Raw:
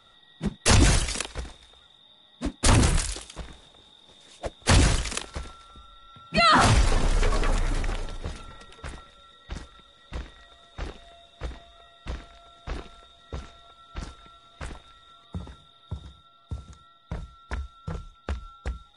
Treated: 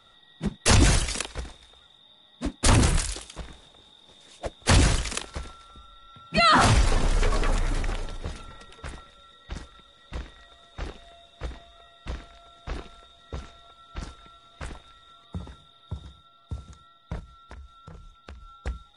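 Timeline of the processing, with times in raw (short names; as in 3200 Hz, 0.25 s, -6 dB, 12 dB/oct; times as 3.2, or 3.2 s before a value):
17.19–18.54 compressor 4:1, threshold -42 dBFS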